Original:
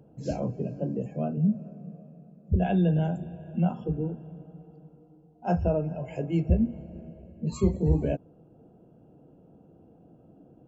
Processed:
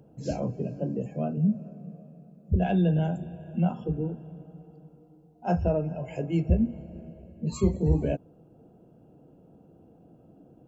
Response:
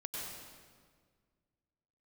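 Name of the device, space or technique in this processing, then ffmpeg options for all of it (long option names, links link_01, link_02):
exciter from parts: -filter_complex "[0:a]asplit=2[link_01][link_02];[link_02]highpass=frequency=3200:poles=1,asoftclip=type=tanh:threshold=-37dB,volume=-6.5dB[link_03];[link_01][link_03]amix=inputs=2:normalize=0"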